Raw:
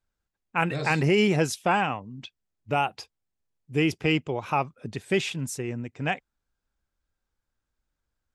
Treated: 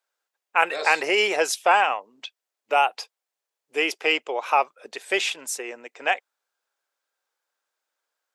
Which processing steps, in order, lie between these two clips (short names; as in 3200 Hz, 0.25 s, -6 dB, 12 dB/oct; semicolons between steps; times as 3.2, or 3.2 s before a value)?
HPF 480 Hz 24 dB/oct; gain +6 dB